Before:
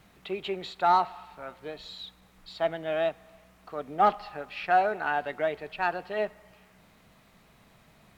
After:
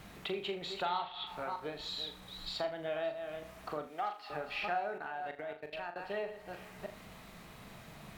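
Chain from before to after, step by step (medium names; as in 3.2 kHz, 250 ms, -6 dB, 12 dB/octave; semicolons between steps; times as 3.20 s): chunks repeated in reverse 312 ms, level -13 dB; 3.87–4.30 s: high-pass 1.5 kHz 6 dB/octave; compression 4:1, threshold -44 dBFS, peak gain reduction 21.5 dB; 0.84–1.27 s: resonant low-pass 3.4 kHz, resonance Q 15; 4.98–5.96 s: level held to a coarse grid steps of 24 dB; flutter echo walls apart 6.8 m, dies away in 0.3 s; trim +6 dB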